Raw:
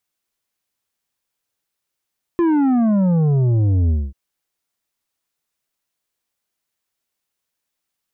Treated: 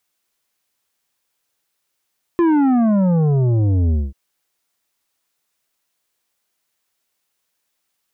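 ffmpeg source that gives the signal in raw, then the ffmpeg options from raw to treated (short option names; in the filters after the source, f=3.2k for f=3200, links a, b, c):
-f lavfi -i "aevalsrc='0.2*clip((1.74-t)/0.23,0,1)*tanh(2.51*sin(2*PI*350*1.74/log(65/350)*(exp(log(65/350)*t/1.74)-1)))/tanh(2.51)':d=1.74:s=44100"
-filter_complex "[0:a]lowshelf=f=240:g=-5.5,asplit=2[a][b];[b]alimiter=limit=-22dB:level=0:latency=1,volume=1dB[c];[a][c]amix=inputs=2:normalize=0"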